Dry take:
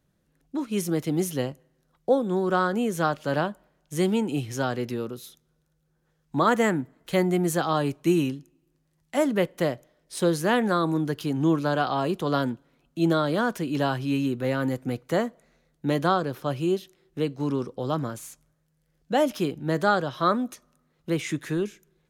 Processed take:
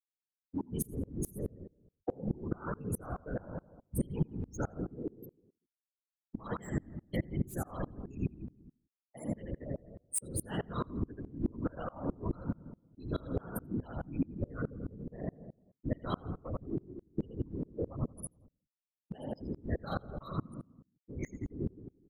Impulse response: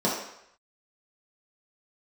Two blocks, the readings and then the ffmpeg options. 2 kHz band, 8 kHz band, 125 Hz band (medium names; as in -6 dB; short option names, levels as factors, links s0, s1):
-20.0 dB, -6.0 dB, -8.0 dB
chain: -filter_complex "[0:a]aemphasis=mode=production:type=75fm,bandreject=f=109.9:t=h:w=4,bandreject=f=219.8:t=h:w=4,bandreject=f=329.7:t=h:w=4,bandreject=f=439.6:t=h:w=4,bandreject=f=549.5:t=h:w=4,bandreject=f=659.4:t=h:w=4,bandreject=f=769.3:t=h:w=4,bandreject=f=879.2:t=h:w=4,bandreject=f=989.1:t=h:w=4,bandreject=f=1099:t=h:w=4,afftfilt=real='re*gte(hypot(re,im),0.126)':imag='im*gte(hypot(re,im),0.126)':win_size=1024:overlap=0.75,highshelf=f=2900:g=-10,acrossover=split=200|3000[s0][s1][s2];[s1]acompressor=threshold=0.0224:ratio=4[s3];[s0][s3][s2]amix=inputs=3:normalize=0,asplit=2[s4][s5];[s5]adelay=84,lowpass=f=1900:p=1,volume=0.422,asplit=2[s6][s7];[s7]adelay=84,lowpass=f=1900:p=1,volume=0.48,asplit=2[s8][s9];[s9]adelay=84,lowpass=f=1900:p=1,volume=0.48,asplit=2[s10][s11];[s11]adelay=84,lowpass=f=1900:p=1,volume=0.48,asplit=2[s12][s13];[s13]adelay=84,lowpass=f=1900:p=1,volume=0.48,asplit=2[s14][s15];[s15]adelay=84,lowpass=f=1900:p=1,volume=0.48[s16];[s4][s6][s8][s10][s12][s14][s16]amix=inputs=7:normalize=0,acrossover=split=160|1200|2400[s17][s18][s19][s20];[s20]asoftclip=type=tanh:threshold=0.0126[s21];[s17][s18][s19][s21]amix=inputs=4:normalize=0,afreqshift=-52,crystalizer=i=1:c=0,acompressor=threshold=0.0178:ratio=3,afftfilt=real='hypot(re,im)*cos(2*PI*random(0))':imag='hypot(re,im)*sin(2*PI*random(1))':win_size=512:overlap=0.75,aeval=exprs='val(0)*pow(10,-29*if(lt(mod(-4.7*n/s,1),2*abs(-4.7)/1000),1-mod(-4.7*n/s,1)/(2*abs(-4.7)/1000),(mod(-4.7*n/s,1)-2*abs(-4.7)/1000)/(1-2*abs(-4.7)/1000))/20)':c=same,volume=4.73"